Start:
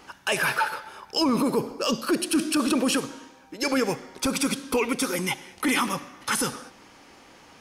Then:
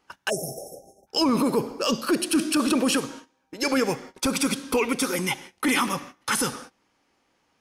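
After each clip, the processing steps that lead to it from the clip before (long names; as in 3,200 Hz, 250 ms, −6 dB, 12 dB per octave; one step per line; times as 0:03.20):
noise gate −41 dBFS, range −19 dB
time-frequency box erased 0:00.30–0:01.07, 810–5,300 Hz
level +1 dB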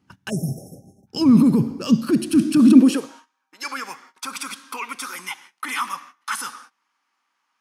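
low shelf with overshoot 340 Hz +13 dB, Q 1.5
high-pass filter sweep 99 Hz → 1,100 Hz, 0:02.45–0:03.27
level −5 dB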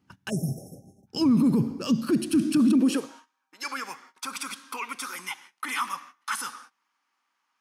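brickwall limiter −11 dBFS, peak gain reduction 9.5 dB
level −3.5 dB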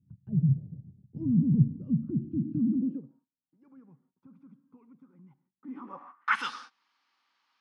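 low-pass filter sweep 140 Hz → 4,300 Hz, 0:05.56–0:06.53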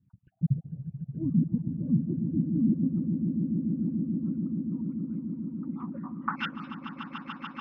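time-frequency cells dropped at random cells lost 38%
auto-filter low-pass sine 4.7 Hz 550–2,900 Hz
echo that builds up and dies away 145 ms, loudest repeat 8, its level −11 dB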